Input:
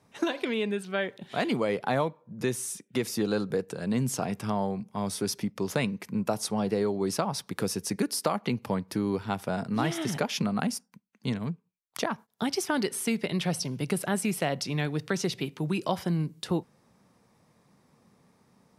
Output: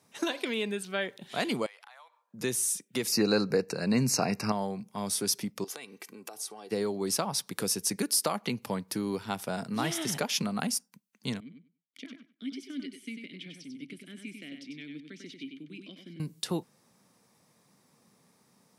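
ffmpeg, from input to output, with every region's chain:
ffmpeg -i in.wav -filter_complex "[0:a]asettb=1/sr,asplit=3[link_01][link_02][link_03];[link_01]atrim=end=1.664[link_04];[link_02]atrim=start=1.66:end=2.34,asetpts=PTS-STARTPTS,afade=type=in:duration=0.004:curve=qsin,afade=type=out:start_time=0.676:duration=0.004:curve=qsin,highpass=frequency=880:width=0.5412,highpass=frequency=880:width=1.3066,highshelf=frequency=5100:gain=-7.5,acompressor=threshold=-47dB:ratio=8:attack=3.2:release=140:knee=1:detection=peak[link_05];[link_03]atrim=start=2.336[link_06];[link_04][link_05]acrossfade=duration=0.004:curve1=hsin:curve2=qsin[link_07];[link_07][link_06]acrossfade=duration=0.004:curve1=qsin:curve2=hsin,asettb=1/sr,asplit=3[link_08][link_09][link_10];[link_08]atrim=end=3.124[link_11];[link_09]atrim=start=3.12:end=4.52,asetpts=PTS-STARTPTS,afade=type=in:duration=0.004:curve=qsin,afade=type=out:start_time=1.396:duration=0.004:curve=qsin,highshelf=frequency=6600:width_type=q:width=1.5:gain=-8,acontrast=38,asuperstop=centerf=3300:order=12:qfactor=3.1[link_12];[link_10]atrim=start=4.516[link_13];[link_11][link_12]acrossfade=duration=0.004:curve1=hsin:curve2=qsin[link_14];[link_14][link_13]acrossfade=duration=0.004:curve1=qsin:curve2=hsin,asettb=1/sr,asplit=3[link_15][link_16][link_17];[link_15]atrim=end=5.644[link_18];[link_16]atrim=start=5.64:end=6.71,asetpts=PTS-STARTPTS,afade=type=in:duration=0.004:curve=qsin,afade=type=out:start_time=1.066:duration=0.004:curve=qsin,highpass=290,aecho=1:1:2.6:0.53,atrim=end_sample=47187,acompressor=threshold=-39dB:ratio=6:attack=3.2:release=140:knee=1:detection=peak[link_19];[link_17]atrim=start=6.706[link_20];[link_18][link_19]acrossfade=duration=0.004:curve1=hsin:curve2=qsin[link_21];[link_21][link_20]acrossfade=duration=0.004:curve1=qsin:curve2=hsin,asettb=1/sr,asplit=3[link_22][link_23][link_24];[link_22]atrim=end=11.404[link_25];[link_23]atrim=start=11.4:end=16.2,asetpts=PTS-STARTPTS,afade=type=in:duration=0.004:curve=qsin,afade=type=out:start_time=4.796:duration=0.004:curve=qsin,asplit=3[link_26][link_27][link_28];[link_26]bandpass=frequency=270:width_type=q:width=8,volume=0dB[link_29];[link_27]bandpass=frequency=2290:width_type=q:width=8,volume=-6dB[link_30];[link_28]bandpass=frequency=3010:width_type=q:width=8,volume=-9dB[link_31];[link_29][link_30][link_31]amix=inputs=3:normalize=0,aecho=1:1:96|192|288:0.501|0.0852|0.0145,atrim=end_sample=211680[link_32];[link_24]atrim=start=16.196[link_33];[link_25][link_32]acrossfade=duration=0.004:curve1=hsin:curve2=qsin[link_34];[link_34][link_33]acrossfade=duration=0.004:curve1=qsin:curve2=hsin,highpass=120,highshelf=frequency=3500:gain=11,volume=-3.5dB" out.wav

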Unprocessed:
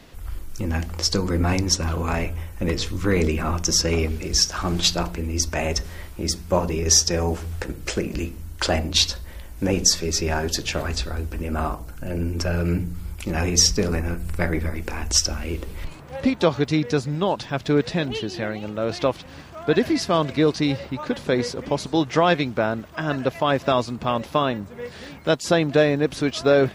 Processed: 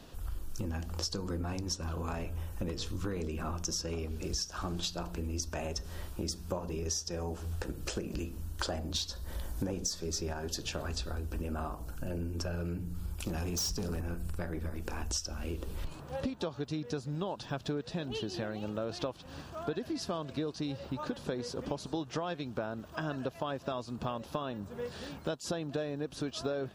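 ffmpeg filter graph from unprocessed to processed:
ffmpeg -i in.wav -filter_complex "[0:a]asettb=1/sr,asplit=3[link_01][link_02][link_03];[link_01]atrim=end=8.594[link_04];[link_02]atrim=start=8.59:end=10.33,asetpts=PTS-STARTPTS,afade=type=in:duration=0.004:curve=qsin,afade=type=out:start_time=1.736:duration=0.004:curve=qsin,acontrast=35,equalizer=frequency=2700:width_type=o:width=0.21:gain=-7[link_05];[link_03]atrim=start=10.326[link_06];[link_04][link_05]acrossfade=duration=0.004:curve1=hsin:curve2=qsin[link_07];[link_07][link_06]acrossfade=duration=0.004:curve1=qsin:curve2=hsin,asettb=1/sr,asplit=3[link_08][link_09][link_10];[link_08]atrim=end=13.214[link_11];[link_09]atrim=start=13.21:end=14.01,asetpts=PTS-STARTPTS,afade=type=in:duration=0.004:curve=qsin,afade=type=out:start_time=0.796:duration=0.004:curve=qsin,highshelf=frequency=6200:gain=4.5,acrossover=split=270|3000[link_12][link_13][link_14];[link_13]acompressor=threshold=-26dB:ratio=6:attack=3.2:release=140:knee=2.83:detection=peak[link_15];[link_12][link_15][link_14]amix=inputs=3:normalize=0,volume=19.5dB,asoftclip=hard,volume=-19.5dB[link_16];[link_10]atrim=start=14.006[link_17];[link_11][link_16]acrossfade=duration=0.004:curve1=hsin:curve2=qsin[link_18];[link_18][link_17]acrossfade=duration=0.004:curve1=qsin:curve2=hsin,acompressor=threshold=-28dB:ratio=10,equalizer=frequency=2100:width_type=o:width=0.35:gain=-11.5,volume=-4dB" out.wav

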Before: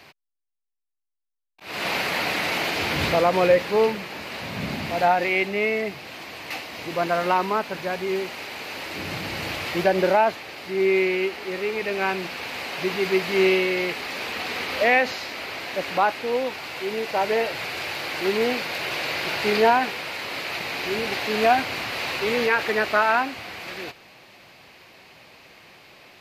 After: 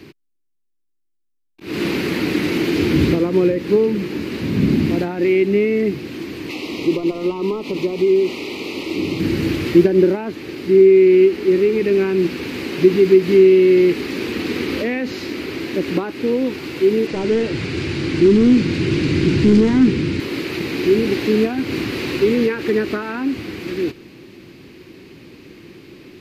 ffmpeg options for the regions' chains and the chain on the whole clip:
ffmpeg -i in.wav -filter_complex "[0:a]asettb=1/sr,asplit=3[link_01][link_02][link_03];[link_01]atrim=end=6.494[link_04];[link_02]atrim=start=6.49:end=9.2,asetpts=PTS-STARTPTS,afade=type=in:duration=0.004:curve=qsin,afade=type=out:start_time=2.706:duration=0.004:curve=qsin,asplit=2[link_05][link_06];[link_06]highpass=frequency=720:poles=1,volume=13dB,asoftclip=type=tanh:threshold=-7dB[link_07];[link_05][link_07]amix=inputs=2:normalize=0,lowpass=frequency=4100:poles=1,volume=-6dB,acompressor=threshold=-26dB:ratio=5:attack=3.2:release=140:knee=1:detection=peak,asuperstop=centerf=1600:order=4:qfactor=1.7[link_08];[link_03]atrim=start=9.196[link_09];[link_04][link_08]acrossfade=duration=0.004:curve1=hsin:curve2=qsin[link_10];[link_10][link_09]acrossfade=duration=0.004:curve1=qsin:curve2=hsin,asettb=1/sr,asplit=3[link_11][link_12][link_13];[link_11]atrim=end=17.074[link_14];[link_12]atrim=start=17.07:end=20.2,asetpts=PTS-STARTPTS,afade=type=in:duration=0.004:curve=qsin,afade=type=out:start_time=3.126:duration=0.004:curve=qsin,asubboost=boost=9.5:cutoff=230,volume=22.5dB,asoftclip=hard,volume=-22.5dB,lowpass=frequency=8800:width=0.5412,lowpass=frequency=8800:width=1.3066[link_15];[link_13]atrim=start=20.196[link_16];[link_14][link_15]acrossfade=duration=0.004:curve1=hsin:curve2=qsin[link_17];[link_17][link_16]acrossfade=duration=0.004:curve1=qsin:curve2=hsin,acompressor=threshold=-23dB:ratio=6,lowshelf=frequency=480:width_type=q:width=3:gain=12,volume=1dB" out.wav

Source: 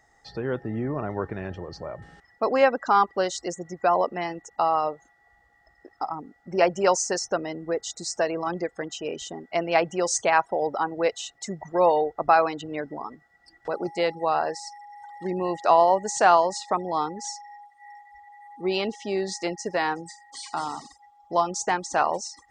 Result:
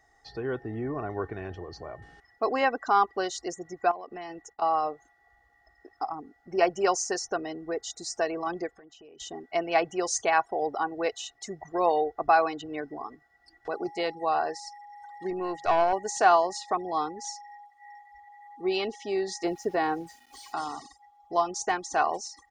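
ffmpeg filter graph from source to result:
ffmpeg -i in.wav -filter_complex "[0:a]asettb=1/sr,asplit=3[link_01][link_02][link_03];[link_01]atrim=end=3.914[link_04];[link_02]atrim=start=3.91:end=4.62,asetpts=PTS-STARTPTS,afade=type=in:duration=0.004:curve=qsin,afade=type=out:start_time=0.706:duration=0.004:curve=qsin,agate=range=-33dB:threshold=-51dB:ratio=3:release=100:detection=peak,acompressor=threshold=-32dB:ratio=8:attack=3.2:release=140:knee=1:detection=peak[link_05];[link_03]atrim=start=4.616[link_06];[link_04][link_05]acrossfade=duration=0.004:curve1=hsin:curve2=qsin[link_07];[link_07][link_06]acrossfade=duration=0.004:curve1=qsin:curve2=hsin,asettb=1/sr,asplit=3[link_08][link_09][link_10];[link_08]atrim=end=8.714[link_11];[link_09]atrim=start=8.71:end=9.2,asetpts=PTS-STARTPTS,afade=type=in:duration=0.004:curve=qsin,afade=type=out:start_time=0.486:duration=0.004:curve=qsin,lowpass=frequency=2900:poles=1,acompressor=threshold=-47dB:ratio=5:attack=3.2:release=140:knee=1:detection=peak[link_12];[link_10]atrim=start=9.196[link_13];[link_11][link_12]acrossfade=duration=0.004:curve1=hsin:curve2=qsin[link_14];[link_14][link_13]acrossfade=duration=0.004:curve1=qsin:curve2=hsin,asettb=1/sr,asplit=3[link_15][link_16][link_17];[link_15]atrim=end=15.304[link_18];[link_16]atrim=start=15.3:end=15.93,asetpts=PTS-STARTPTS,afade=type=in:duration=0.004:curve=qsin,afade=type=out:start_time=0.626:duration=0.004:curve=qsin,aeval=exprs='(tanh(3.98*val(0)+0.4)-tanh(0.4))/3.98':channel_layout=same,bandreject=frequency=50:width_type=h:width=6,bandreject=frequency=100:width_type=h:width=6,bandreject=frequency=150:width_type=h:width=6,bandreject=frequency=200:width_type=h:width=6[link_19];[link_17]atrim=start=15.926[link_20];[link_18][link_19]acrossfade=duration=0.004:curve1=hsin:curve2=qsin[link_21];[link_21][link_20]acrossfade=duration=0.004:curve1=qsin:curve2=hsin,asettb=1/sr,asplit=3[link_22][link_23][link_24];[link_22]atrim=end=19.444[link_25];[link_23]atrim=start=19.44:end=20.53,asetpts=PTS-STARTPTS,afade=type=in:duration=0.004:curve=qsin,afade=type=out:start_time=1.086:duration=0.004:curve=qsin,tiltshelf=frequency=1100:gain=6,aeval=exprs='val(0)*gte(abs(val(0)),0.00355)':channel_layout=same[link_26];[link_24]atrim=start=20.526[link_27];[link_25][link_26]acrossfade=duration=0.004:curve1=hsin:curve2=qsin[link_28];[link_28][link_27]acrossfade=duration=0.004:curve1=qsin:curve2=hsin,equalizer=frequency=340:width=7.7:gain=-2.5,bandreject=frequency=7900:width=9.2,aecho=1:1:2.7:0.5,volume=-4dB" out.wav

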